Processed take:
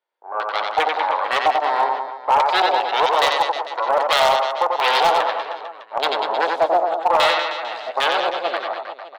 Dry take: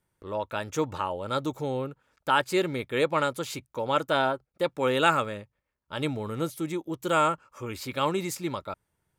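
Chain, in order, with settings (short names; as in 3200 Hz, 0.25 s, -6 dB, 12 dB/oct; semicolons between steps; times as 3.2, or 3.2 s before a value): tilt shelf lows +7.5 dB; added harmonics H 4 -19 dB, 8 -10 dB, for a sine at -9 dBFS; LFO low-pass square 2.5 Hz 880–3900 Hz; HPF 560 Hz 24 dB/oct; doubler 12 ms -13.5 dB; reverse bouncing-ball echo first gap 90 ms, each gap 1.15×, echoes 5; AGC gain up to 8.5 dB; hard clip -7 dBFS, distortion -21 dB; 3.06–5.18 high shelf 4900 Hz +10 dB; gain -2.5 dB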